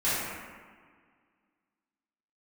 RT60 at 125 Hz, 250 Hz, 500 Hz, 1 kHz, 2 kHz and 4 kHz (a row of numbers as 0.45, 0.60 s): 1.8, 2.2, 1.7, 1.8, 1.6, 1.1 s